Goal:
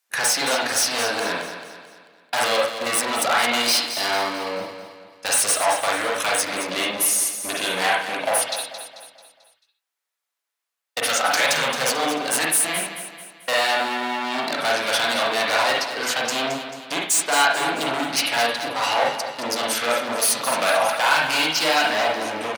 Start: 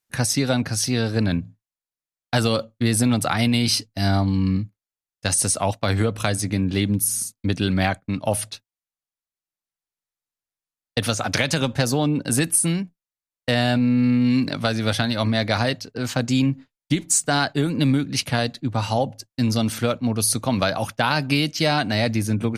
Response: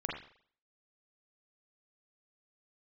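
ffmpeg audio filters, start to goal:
-filter_complex "[0:a]asplit=3[s0][s1][s2];[s0]afade=t=out:st=21.87:d=0.02[s3];[s1]lowpass=f=1600:p=1,afade=t=in:st=21.87:d=0.02,afade=t=out:st=22.27:d=0.02[s4];[s2]afade=t=in:st=22.27:d=0.02[s5];[s3][s4][s5]amix=inputs=3:normalize=0,volume=15,asoftclip=hard,volume=0.0668,highpass=670,aecho=1:1:220|440|660|880|1100:0.316|0.145|0.0669|0.0308|0.0142[s6];[1:a]atrim=start_sample=2205,atrim=end_sample=6615[s7];[s6][s7]afir=irnorm=-1:irlink=0,volume=2.51"

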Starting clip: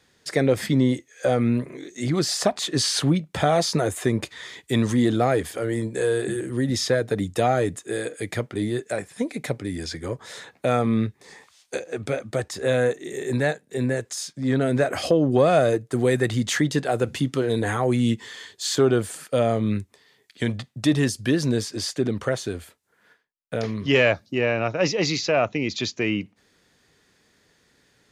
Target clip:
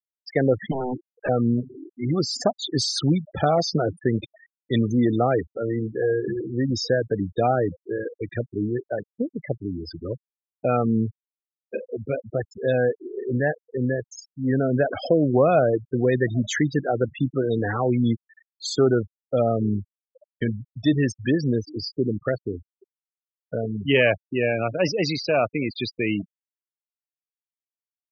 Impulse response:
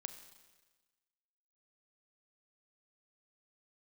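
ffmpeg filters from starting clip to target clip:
-filter_complex "[0:a]aecho=1:1:814|1628|2442:0.0668|0.0334|0.0167,asettb=1/sr,asplit=3[s0][s1][s2];[s0]atrim=end=0.714[s3];[s1]atrim=start=0.71:end=1.29,asetpts=PTS-STARTPTS,afade=t=in:d=0.004:c=qsin,afade=t=out:st=0.576:d=0.004:c=qsin,aeval=exprs='0.0944*(abs(mod(val(0)/0.0944+3,4)-2)-1)':c=same[s4];[s2]atrim=start=1.286[s5];[s3][s4]acrossfade=d=0.004:c1=hsin:c2=qsin[s6];[s6][s5]acrossfade=d=0.004:c1=qsin:c2=hsin,afftfilt=real='re*gte(hypot(re,im),0.0891)':imag='im*gte(hypot(re,im),0.0891)':win_size=1024:overlap=0.75"

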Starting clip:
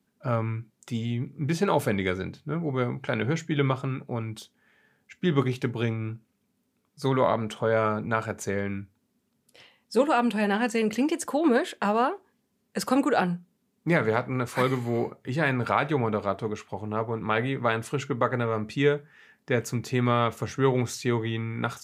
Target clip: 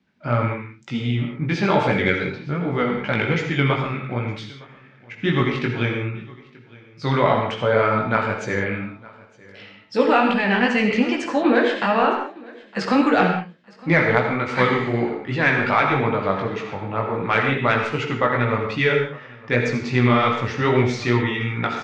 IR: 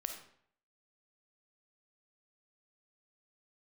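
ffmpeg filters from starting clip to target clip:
-filter_complex "[0:a]lowpass=f=5200:w=0.5412,lowpass=f=5200:w=1.3066,equalizer=f=2200:t=o:w=1:g=6.5,bandreject=f=420:w=12,asplit=2[s0][s1];[s1]acontrast=78,volume=0.794[s2];[s0][s2]amix=inputs=2:normalize=0,flanger=delay=16:depth=5.5:speed=2.6,aecho=1:1:911|1822:0.0708|0.0149[s3];[1:a]atrim=start_sample=2205,afade=t=out:st=0.18:d=0.01,atrim=end_sample=8379,asetrate=29988,aresample=44100[s4];[s3][s4]afir=irnorm=-1:irlink=0,volume=0.841"

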